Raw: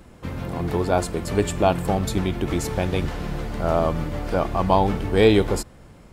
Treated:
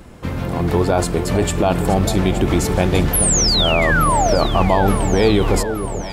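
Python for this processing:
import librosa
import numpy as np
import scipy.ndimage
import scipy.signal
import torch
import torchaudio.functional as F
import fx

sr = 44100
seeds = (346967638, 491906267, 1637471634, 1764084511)

p1 = fx.spec_paint(x, sr, seeds[0], shape='fall', start_s=3.13, length_s=1.26, low_hz=510.0, high_hz=12000.0, level_db=-24.0)
p2 = fx.over_compress(p1, sr, threshold_db=-21.0, ratio=-0.5)
p3 = p1 + (p2 * librosa.db_to_amplitude(1.5))
p4 = fx.echo_alternate(p3, sr, ms=436, hz=820.0, feedback_pct=74, wet_db=-9)
y = p4 * librosa.db_to_amplitude(-1.0)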